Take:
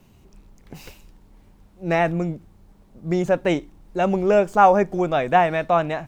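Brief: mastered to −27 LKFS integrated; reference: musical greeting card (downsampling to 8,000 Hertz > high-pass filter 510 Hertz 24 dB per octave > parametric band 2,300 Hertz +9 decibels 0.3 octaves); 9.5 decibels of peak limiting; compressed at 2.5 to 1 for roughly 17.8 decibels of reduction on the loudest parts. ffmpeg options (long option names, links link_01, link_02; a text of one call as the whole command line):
ffmpeg -i in.wav -af "acompressor=threshold=-38dB:ratio=2.5,alimiter=level_in=6dB:limit=-24dB:level=0:latency=1,volume=-6dB,aresample=8000,aresample=44100,highpass=frequency=510:width=0.5412,highpass=frequency=510:width=1.3066,equalizer=frequency=2300:width_type=o:width=0.3:gain=9,volume=16dB" out.wav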